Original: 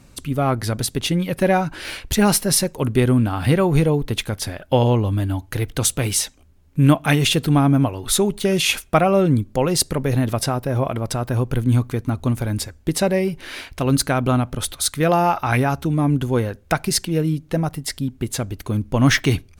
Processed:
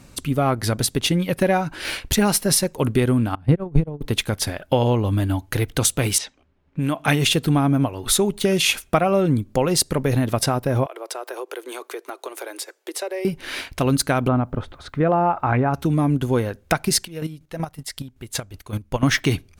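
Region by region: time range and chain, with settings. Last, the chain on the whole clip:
0:03.35–0:04.01: noise gate −15 dBFS, range −26 dB + spectral tilt −3.5 dB per octave
0:06.18–0:07.08: low-pass that shuts in the quiet parts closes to 2,500 Hz, open at −10.5 dBFS + low-shelf EQ 160 Hz −10 dB + downward compressor 4 to 1, threshold −21 dBFS
0:10.86–0:13.25: Butterworth high-pass 340 Hz 72 dB per octave + downward compressor 2.5 to 1, threshold −33 dBFS
0:14.28–0:15.74: low-pass filter 1,400 Hz + bit-depth reduction 12 bits, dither none
0:17.03–0:19.03: parametric band 240 Hz −8 dB 2.1 octaves + square-wave tremolo 5.3 Hz, depth 65%, duty 25%
whole clip: transient designer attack 0 dB, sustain −4 dB; low-shelf EQ 120 Hz −4 dB; downward compressor 2.5 to 1, threshold −20 dBFS; level +3.5 dB

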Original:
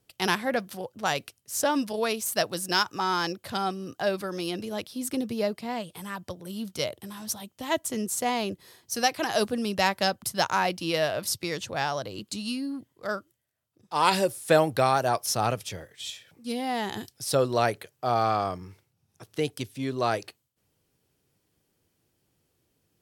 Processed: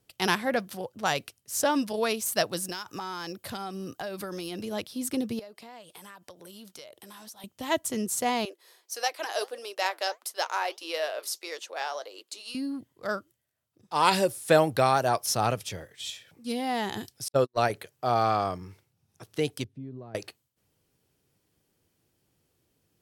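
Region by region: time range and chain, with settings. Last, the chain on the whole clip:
0:02.66–0:04.62: high-shelf EQ 11,000 Hz +9 dB + downward compressor 16 to 1, threshold −31 dBFS
0:05.39–0:07.44: bass and treble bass −14 dB, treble +1 dB + downward compressor, threshold −43 dBFS
0:08.45–0:12.55: inverse Chebyshev high-pass filter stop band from 200 Hz + flanger 1.6 Hz, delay 1.5 ms, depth 7.3 ms, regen −77%
0:17.28–0:17.70: noise gate −24 dBFS, range −56 dB + one half of a high-frequency compander decoder only
0:19.64–0:20.15: downward compressor 2.5 to 1, threshold −35 dBFS + resonant band-pass 150 Hz, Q 0.95
whole clip: no processing

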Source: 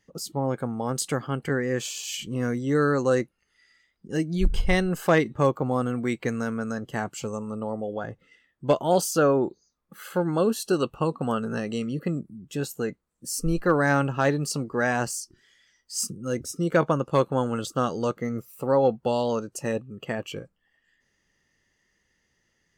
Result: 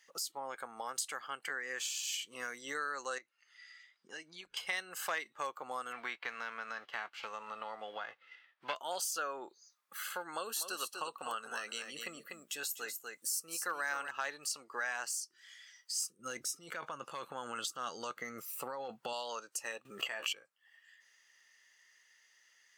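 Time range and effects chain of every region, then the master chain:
0:03.18–0:04.57: low-pass filter 6,000 Hz + downward compressor 4 to 1, threshold −37 dBFS
0:05.91–0:08.75: spectral envelope flattened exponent 0.6 + high-frequency loss of the air 340 metres
0:10.32–0:14.11: high-shelf EQ 11,000 Hz +10 dB + single-tap delay 245 ms −8.5 dB
0:16.19–0:19.13: bass and treble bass +13 dB, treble −1 dB + compressor whose output falls as the input rises −22 dBFS
0:19.85–0:20.33: double-tracking delay 15 ms −9 dB + envelope flattener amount 100%
whole clip: high-pass filter 1,300 Hz 12 dB per octave; downward compressor 2.5 to 1, threshold −48 dBFS; level +6.5 dB

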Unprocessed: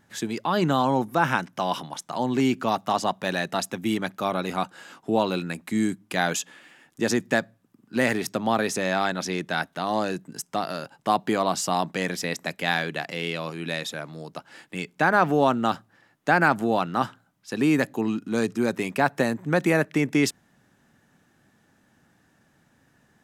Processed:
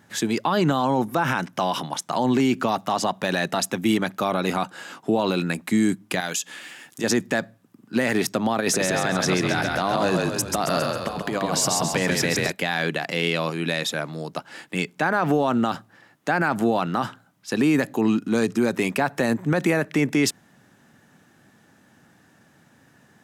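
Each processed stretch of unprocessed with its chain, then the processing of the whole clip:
0:06.20–0:07.04: high-shelf EQ 2,300 Hz +10 dB + downward compressor 2 to 1, threshold −40 dBFS
0:08.60–0:12.52: compressor whose output falls as the input rises −27 dBFS, ratio −0.5 + echo with shifted repeats 135 ms, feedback 52%, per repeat −36 Hz, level −4.5 dB
whole clip: high-pass filter 87 Hz; brickwall limiter −18 dBFS; level +6.5 dB

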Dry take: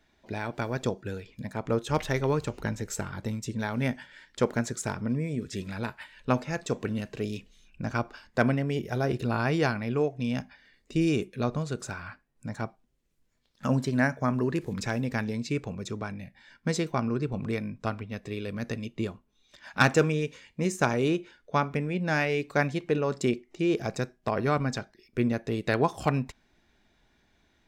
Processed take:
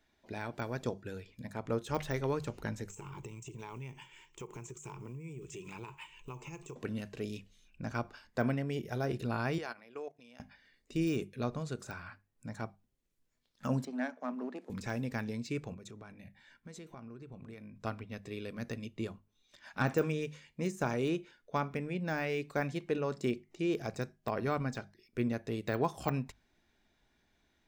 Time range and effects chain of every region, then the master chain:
0:02.89–0:06.76: one scale factor per block 7 bits + EQ curve with evenly spaced ripples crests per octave 0.71, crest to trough 17 dB + downward compressor 10 to 1, threshold −34 dBFS
0:09.58–0:10.40: high-pass filter 430 Hz + output level in coarse steps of 17 dB
0:13.85–0:14.70: gain on one half-wave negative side −7 dB + Chebyshev high-pass with heavy ripple 180 Hz, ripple 6 dB + high-frequency loss of the air 54 metres
0:15.74–0:17.76: parametric band 5,000 Hz −6.5 dB 0.25 octaves + downward compressor, threshold −39 dBFS
whole clip: de-essing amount 95%; high-shelf EQ 8,000 Hz +4 dB; mains-hum notches 50/100/150/200 Hz; level −6.5 dB

